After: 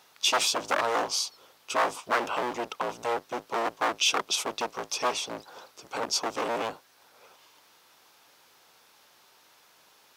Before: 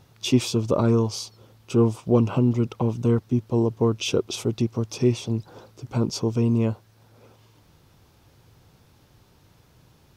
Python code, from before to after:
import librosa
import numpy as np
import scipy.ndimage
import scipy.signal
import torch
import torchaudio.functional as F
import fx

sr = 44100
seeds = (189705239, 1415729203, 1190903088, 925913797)

y = fx.octave_divider(x, sr, octaves=1, level_db=3.0)
y = 10.0 ** (-17.5 / 20.0) * (np.abs((y / 10.0 ** (-17.5 / 20.0) + 3.0) % 4.0 - 2.0) - 1.0)
y = scipy.signal.sosfilt(scipy.signal.butter(2, 830.0, 'highpass', fs=sr, output='sos'), y)
y = F.gain(torch.from_numpy(y), 4.5).numpy()